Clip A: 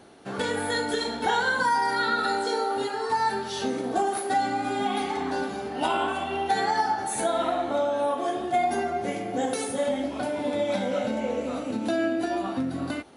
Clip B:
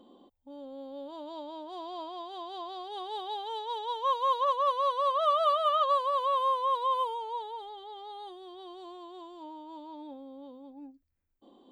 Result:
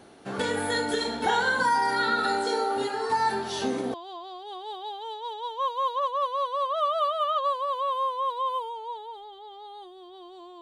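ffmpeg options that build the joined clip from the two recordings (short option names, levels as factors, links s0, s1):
-filter_complex "[1:a]asplit=2[s0][s1];[0:a]apad=whole_dur=10.61,atrim=end=10.61,atrim=end=3.942[s2];[s1]atrim=start=2.388:end=9.06[s3];[s0]atrim=start=1.69:end=2.39,asetpts=PTS-STARTPTS,volume=0.473,afade=t=in:d=0.004:c=hsin,afade=t=out:st=0.696:d=0.004:c=hsin,adelay=3240[s4];[s2][s3]acrossfade=d=0.004:c1=hsin:c2=hsin[s5];[s5][s4]amix=inputs=2:normalize=0"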